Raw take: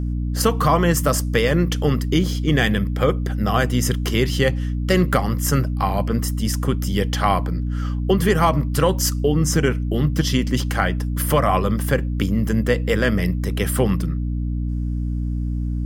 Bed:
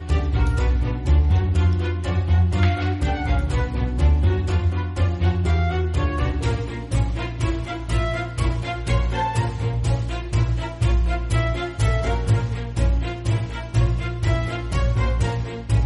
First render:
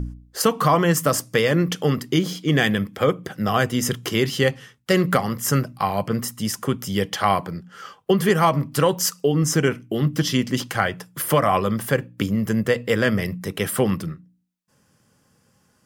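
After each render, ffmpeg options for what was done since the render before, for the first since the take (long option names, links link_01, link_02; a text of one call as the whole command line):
ffmpeg -i in.wav -af "bandreject=frequency=60:width_type=h:width=4,bandreject=frequency=120:width_type=h:width=4,bandreject=frequency=180:width_type=h:width=4,bandreject=frequency=240:width_type=h:width=4,bandreject=frequency=300:width_type=h:width=4" out.wav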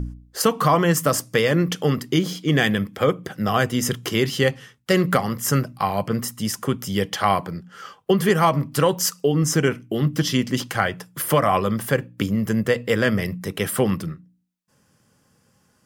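ffmpeg -i in.wav -af anull out.wav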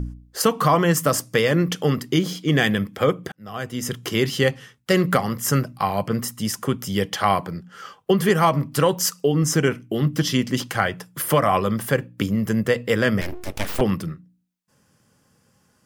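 ffmpeg -i in.wav -filter_complex "[0:a]asettb=1/sr,asplit=3[link_01][link_02][link_03];[link_01]atrim=end=13.214[link_04];[link_02]atrim=start=13.21:end=13.81,asetpts=PTS-STARTPTS,afade=type=in:duration=0.004:curve=qsin,afade=type=out:start_time=0.596:duration=0.004:curve=qsin,aeval=exprs='abs(val(0))':channel_layout=same[link_05];[link_03]atrim=start=13.806[link_06];[link_04][link_05]acrossfade=duration=0.004:curve1=hsin:curve2=qsin[link_07];[link_07][link_06]acrossfade=duration=0.004:curve1=qsin:curve2=hsin,asplit=2[link_08][link_09];[link_08]atrim=end=3.32,asetpts=PTS-STARTPTS,afade=type=out:start_time=3.316:duration=0.004:curve=hsin[link_10];[link_09]atrim=start=3.32,asetpts=PTS-STARTPTS,afade=type=in:duration=0.9[link_11];[link_10][link_11]concat=n=2:v=0:a=1" out.wav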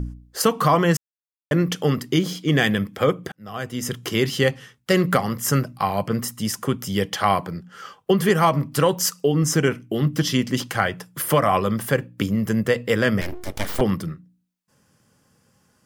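ffmpeg -i in.wav -filter_complex "[0:a]asettb=1/sr,asplit=3[link_01][link_02][link_03];[link_01]atrim=end=13.384[link_04];[link_02]atrim=start=13.38:end=14.05,asetpts=PTS-STARTPTS,afade=type=in:duration=0.004:curve=qsin,afade=type=out:start_time=0.666:duration=0.004:curve=qsin,bandreject=frequency=2600:width=9.2[link_05];[link_03]atrim=start=14.046[link_06];[link_04][link_05]acrossfade=duration=0.004:curve1=hsin:curve2=qsin[link_07];[link_07][link_06]acrossfade=duration=0.004:curve1=qsin:curve2=hsin,asplit=3[link_08][link_09][link_10];[link_08]atrim=end=0.97,asetpts=PTS-STARTPTS,afade=type=out:start_time=0.966:duration=0.004:curve=hsin[link_11];[link_09]atrim=start=0.97:end=1.51,asetpts=PTS-STARTPTS,volume=0[link_12];[link_10]atrim=start=1.51,asetpts=PTS-STARTPTS,afade=type=in:duration=0.004:curve=hsin[link_13];[link_11][link_12][link_13]concat=n=3:v=0:a=1" out.wav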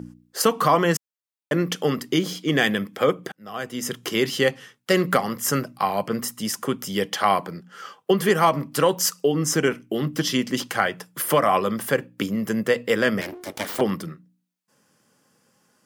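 ffmpeg -i in.wav -af "highpass=210" out.wav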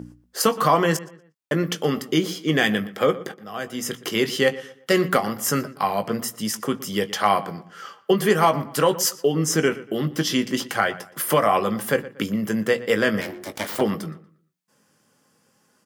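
ffmpeg -i in.wav -filter_complex "[0:a]asplit=2[link_01][link_02];[link_02]adelay=19,volume=-11dB[link_03];[link_01][link_03]amix=inputs=2:normalize=0,asplit=2[link_04][link_05];[link_05]adelay=119,lowpass=frequency=3100:poles=1,volume=-17dB,asplit=2[link_06][link_07];[link_07]adelay=119,lowpass=frequency=3100:poles=1,volume=0.35,asplit=2[link_08][link_09];[link_09]adelay=119,lowpass=frequency=3100:poles=1,volume=0.35[link_10];[link_04][link_06][link_08][link_10]amix=inputs=4:normalize=0" out.wav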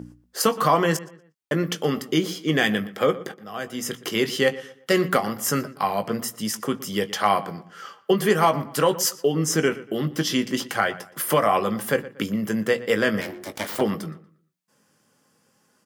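ffmpeg -i in.wav -af "volume=-1dB" out.wav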